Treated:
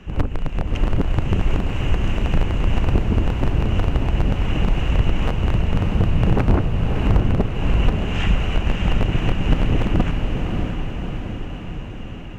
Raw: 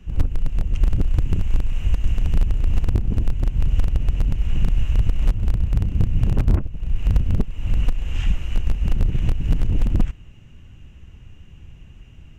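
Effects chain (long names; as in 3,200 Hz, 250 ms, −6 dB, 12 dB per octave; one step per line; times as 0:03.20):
mid-hump overdrive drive 21 dB, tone 1,200 Hz, clips at −5.5 dBFS
feedback delay with all-pass diffusion 623 ms, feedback 62%, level −4 dB
level +1.5 dB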